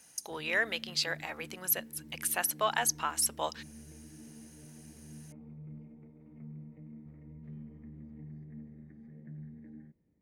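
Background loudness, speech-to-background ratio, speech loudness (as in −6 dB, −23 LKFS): −50.5 LKFS, 19.0 dB, −31.5 LKFS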